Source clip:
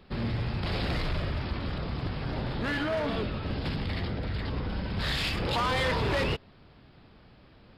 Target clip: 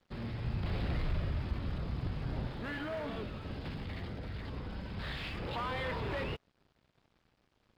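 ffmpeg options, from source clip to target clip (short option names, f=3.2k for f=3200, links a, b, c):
-filter_complex "[0:a]acrossover=split=3700[a][b];[b]acompressor=threshold=-52dB:ratio=4:attack=1:release=60[c];[a][c]amix=inputs=2:normalize=0,aeval=exprs='sgn(val(0))*max(abs(val(0))-0.002,0)':c=same,asettb=1/sr,asplit=3[d][e][f];[d]atrim=end=0.444[g];[e]atrim=start=0.44:end=2.47,asetpts=PTS-STARTPTS,afade=t=in:d=0.004:c=qsin,afade=t=out:st=2.026:d=0.004:c=qsin,lowshelf=f=210:g=7.5[h];[f]atrim=start=2.466[i];[g][h]acrossfade=d=0.004:c1=hsin:c2=qsin[j];[j][i]acrossfade=d=0.004:c1=qsin:c2=hsin,volume=-8.5dB"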